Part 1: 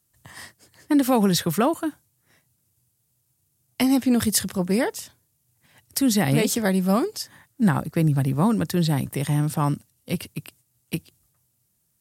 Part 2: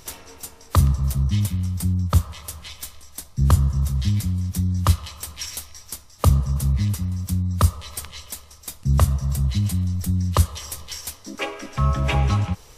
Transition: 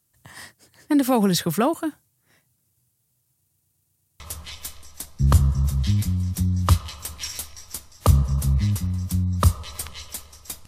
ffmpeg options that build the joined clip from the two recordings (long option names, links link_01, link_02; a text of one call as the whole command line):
ffmpeg -i cue0.wav -i cue1.wav -filter_complex "[0:a]apad=whole_dur=10.67,atrim=end=10.67,asplit=7[link_01][link_02][link_03][link_04][link_05][link_06][link_07];[link_01]atrim=end=3.482[link_08];[link_02]atrim=start=3.358:end=3.482[link_09];[link_03]atrim=start=3.358:end=3.482[link_10];[link_04]atrim=start=3.358:end=3.482[link_11];[link_05]atrim=start=3.358:end=3.482[link_12];[link_06]atrim=start=3.358:end=3.482[link_13];[link_07]atrim=start=3.358:end=3.482[link_14];[1:a]atrim=start=2.378:end=8.85[link_15];[link_08][link_09]acrossfade=duration=0.004:curve1=hsin:curve2=hsin[link_16];[link_16][link_10]acrossfade=duration=0.004:curve1=hsin:curve2=hsin[link_17];[link_17][link_11]acrossfade=duration=0.004:curve1=hsin:curve2=hsin[link_18];[link_18][link_12]acrossfade=duration=0.004:curve1=hsin:curve2=hsin[link_19];[link_19][link_13]acrossfade=duration=0.004:curve1=hsin:curve2=hsin[link_20];[link_20][link_14]acrossfade=duration=0.004:curve1=hsin:curve2=hsin[link_21];[link_21][link_15]acrossfade=duration=0.004:curve1=hsin:curve2=hsin" out.wav